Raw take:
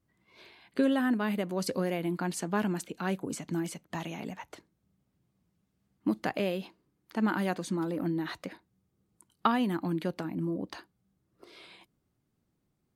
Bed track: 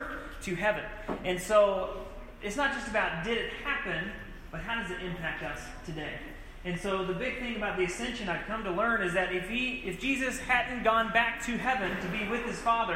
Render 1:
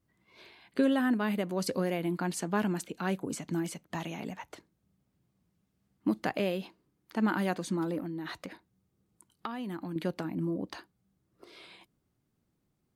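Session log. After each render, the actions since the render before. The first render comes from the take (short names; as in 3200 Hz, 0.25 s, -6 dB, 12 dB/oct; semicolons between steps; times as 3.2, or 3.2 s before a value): 7.99–9.96 compressor 4:1, threshold -35 dBFS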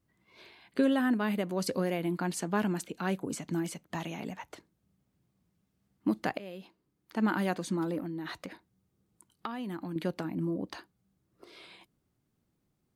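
6.38–7.25 fade in, from -18 dB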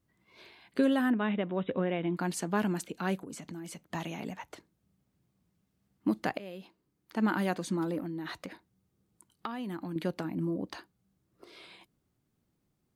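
1.1–2.17 brick-wall FIR low-pass 3900 Hz; 3.2–3.82 compressor, threshold -39 dBFS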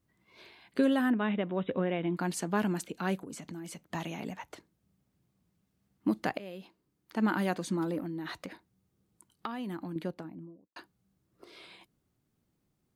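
9.64–10.76 studio fade out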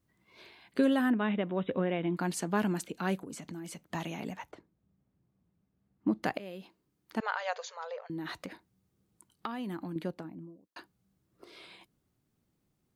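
4.51–6.23 LPF 1100 Hz 6 dB/oct; 7.2–8.1 brick-wall FIR band-pass 430–7300 Hz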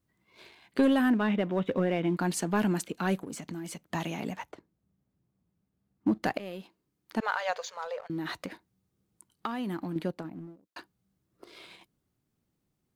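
sample leveller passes 1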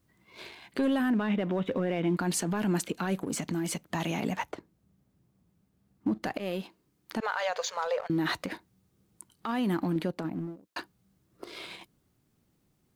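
in parallel at +3 dB: compressor, threshold -33 dBFS, peak gain reduction 12.5 dB; on the sum: limiter -20.5 dBFS, peak gain reduction 10.5 dB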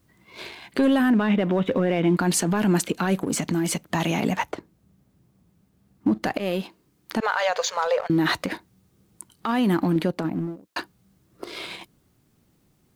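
gain +7.5 dB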